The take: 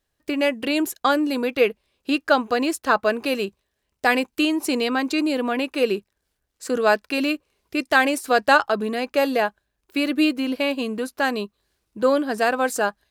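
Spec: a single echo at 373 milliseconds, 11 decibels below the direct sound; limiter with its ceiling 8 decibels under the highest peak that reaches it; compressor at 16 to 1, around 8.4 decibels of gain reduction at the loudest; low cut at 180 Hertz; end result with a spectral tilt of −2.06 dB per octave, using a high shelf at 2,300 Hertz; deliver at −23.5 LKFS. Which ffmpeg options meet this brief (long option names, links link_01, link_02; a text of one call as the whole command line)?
ffmpeg -i in.wav -af "highpass=180,highshelf=frequency=2300:gain=-4,acompressor=threshold=-20dB:ratio=16,alimiter=limit=-17dB:level=0:latency=1,aecho=1:1:373:0.282,volume=4.5dB" out.wav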